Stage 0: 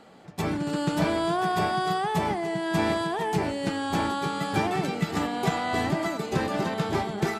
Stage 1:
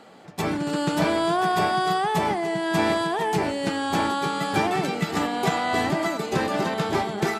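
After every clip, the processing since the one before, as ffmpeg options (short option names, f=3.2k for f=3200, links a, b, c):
-af "lowshelf=f=140:g=-9,volume=4dB"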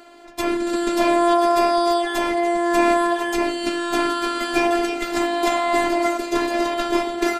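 -af "afftfilt=real='hypot(re,im)*cos(PI*b)':imag='0':win_size=512:overlap=0.75,volume=7dB"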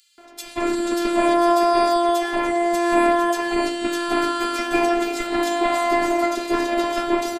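-filter_complex "[0:a]acrossover=split=3100[a][b];[a]adelay=180[c];[c][b]amix=inputs=2:normalize=0"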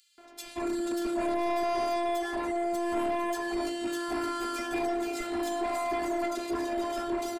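-af "asoftclip=type=tanh:threshold=-17.5dB,volume=-6.5dB"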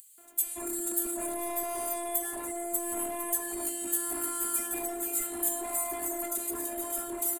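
-af "aexciter=amount=12.7:drive=9.7:freq=7.9k,volume=-7dB"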